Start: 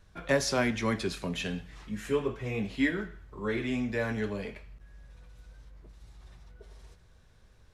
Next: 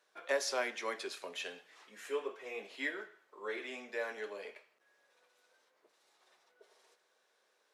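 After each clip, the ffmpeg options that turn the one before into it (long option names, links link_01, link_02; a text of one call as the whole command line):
ffmpeg -i in.wav -af "highpass=frequency=410:width=0.5412,highpass=frequency=410:width=1.3066,volume=-5.5dB" out.wav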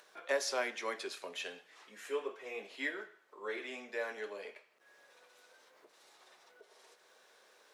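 ffmpeg -i in.wav -af "acompressor=mode=upward:threshold=-53dB:ratio=2.5" out.wav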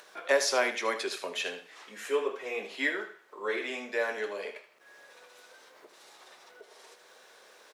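ffmpeg -i in.wav -af "aecho=1:1:77:0.251,volume=8dB" out.wav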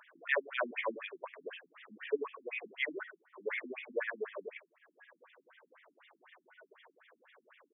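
ffmpeg -i in.wav -af "bandreject=frequency=800:width=12,afftfilt=real='re*between(b*sr/1024,210*pow(2600/210,0.5+0.5*sin(2*PI*4*pts/sr))/1.41,210*pow(2600/210,0.5+0.5*sin(2*PI*4*pts/sr))*1.41)':imag='im*between(b*sr/1024,210*pow(2600/210,0.5+0.5*sin(2*PI*4*pts/sr))/1.41,210*pow(2600/210,0.5+0.5*sin(2*PI*4*pts/sr))*1.41)':win_size=1024:overlap=0.75" out.wav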